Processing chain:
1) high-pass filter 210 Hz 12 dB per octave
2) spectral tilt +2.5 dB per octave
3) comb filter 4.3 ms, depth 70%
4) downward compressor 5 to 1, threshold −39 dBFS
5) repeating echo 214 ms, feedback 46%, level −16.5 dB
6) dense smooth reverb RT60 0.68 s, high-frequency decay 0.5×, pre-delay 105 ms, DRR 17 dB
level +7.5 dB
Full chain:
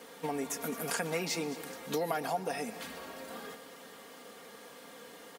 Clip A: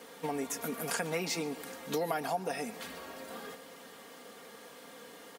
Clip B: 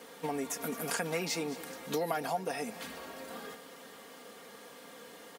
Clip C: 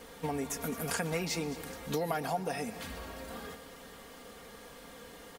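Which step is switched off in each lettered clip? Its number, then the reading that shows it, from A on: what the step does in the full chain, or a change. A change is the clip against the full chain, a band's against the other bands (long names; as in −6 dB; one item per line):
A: 5, echo-to-direct ratio −13.0 dB to −17.0 dB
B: 6, echo-to-direct ratio −13.0 dB to −15.5 dB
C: 1, 125 Hz band +6.0 dB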